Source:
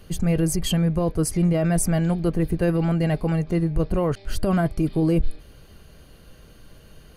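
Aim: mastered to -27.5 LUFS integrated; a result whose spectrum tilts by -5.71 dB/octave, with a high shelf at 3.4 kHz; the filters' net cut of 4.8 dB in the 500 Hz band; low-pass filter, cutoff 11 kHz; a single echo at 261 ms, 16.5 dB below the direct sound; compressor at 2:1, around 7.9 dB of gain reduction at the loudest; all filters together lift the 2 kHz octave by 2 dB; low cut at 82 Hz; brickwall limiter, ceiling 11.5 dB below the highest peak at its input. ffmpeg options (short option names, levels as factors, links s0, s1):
-af "highpass=82,lowpass=11000,equalizer=f=500:t=o:g=-6.5,equalizer=f=2000:t=o:g=4.5,highshelf=f=3400:g=-5,acompressor=threshold=0.0224:ratio=2,alimiter=level_in=2:limit=0.0631:level=0:latency=1,volume=0.501,aecho=1:1:261:0.15,volume=3.35"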